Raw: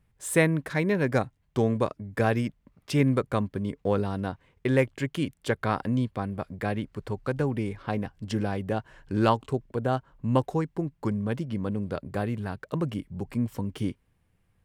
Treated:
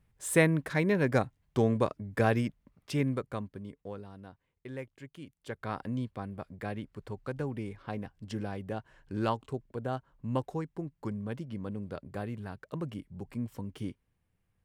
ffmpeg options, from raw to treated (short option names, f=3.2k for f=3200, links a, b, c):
-af "volume=8dB,afade=t=out:st=2.34:d=0.88:silence=0.446684,afade=t=out:st=3.22:d=0.78:silence=0.354813,afade=t=in:st=5.34:d=0.47:silence=0.316228"